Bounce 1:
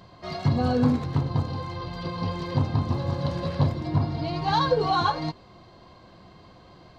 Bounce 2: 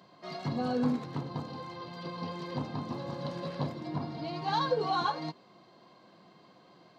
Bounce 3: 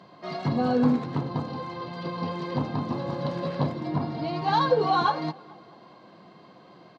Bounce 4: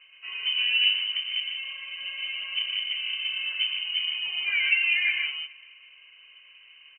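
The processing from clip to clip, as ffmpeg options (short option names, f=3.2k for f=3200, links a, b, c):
-af "highpass=f=160:w=0.5412,highpass=f=160:w=1.3066,volume=-6.5dB"
-filter_complex "[0:a]aemphasis=mode=reproduction:type=50kf,asplit=2[a][b];[b]adelay=214,lowpass=f=4.4k:p=1,volume=-23dB,asplit=2[c][d];[d]adelay=214,lowpass=f=4.4k:p=1,volume=0.54,asplit=2[e][f];[f]adelay=214,lowpass=f=4.4k:p=1,volume=0.54,asplit=2[g][h];[h]adelay=214,lowpass=f=4.4k:p=1,volume=0.54[i];[a][c][e][g][i]amix=inputs=5:normalize=0,volume=7.5dB"
-af "highshelf=f=2.3k:g=-12,aecho=1:1:113.7|151.6:0.447|0.562,lowpass=f=2.7k:t=q:w=0.5098,lowpass=f=2.7k:t=q:w=0.6013,lowpass=f=2.7k:t=q:w=0.9,lowpass=f=2.7k:t=q:w=2.563,afreqshift=-3200,volume=-2dB"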